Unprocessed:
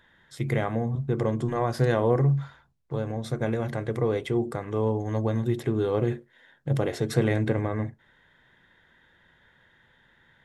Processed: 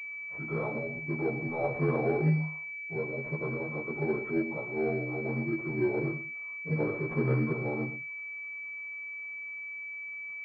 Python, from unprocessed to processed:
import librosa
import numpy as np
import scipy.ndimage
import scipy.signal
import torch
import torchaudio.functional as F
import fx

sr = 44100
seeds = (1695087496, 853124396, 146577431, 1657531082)

p1 = fx.partial_stretch(x, sr, pct=79)
p2 = fx.low_shelf(p1, sr, hz=390.0, db=-7.0)
p3 = fx.quant_companded(p2, sr, bits=4)
p4 = p2 + F.gain(torch.from_numpy(p3), -7.5).numpy()
p5 = fx.chorus_voices(p4, sr, voices=4, hz=0.53, base_ms=15, depth_ms=4.6, mix_pct=50)
p6 = p5 + fx.echo_single(p5, sr, ms=116, db=-12.0, dry=0)
y = fx.pwm(p6, sr, carrier_hz=2300.0)